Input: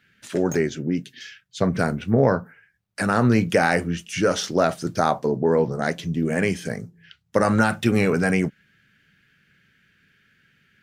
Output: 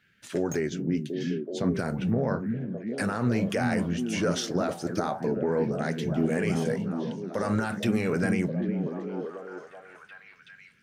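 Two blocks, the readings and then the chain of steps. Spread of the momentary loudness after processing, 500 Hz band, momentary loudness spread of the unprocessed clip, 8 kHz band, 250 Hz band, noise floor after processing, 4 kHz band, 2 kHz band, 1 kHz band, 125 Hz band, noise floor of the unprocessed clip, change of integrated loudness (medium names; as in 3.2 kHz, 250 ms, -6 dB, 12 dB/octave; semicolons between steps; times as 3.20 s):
9 LU, -6.5 dB, 10 LU, -5.5 dB, -3.5 dB, -54 dBFS, -5.5 dB, -8.5 dB, -9.5 dB, -4.5 dB, -65 dBFS, -6.5 dB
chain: peak limiter -13 dBFS, peak gain reduction 9 dB; flange 0.24 Hz, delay 1.8 ms, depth 3.8 ms, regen -88%; repeats whose band climbs or falls 377 ms, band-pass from 180 Hz, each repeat 0.7 oct, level 0 dB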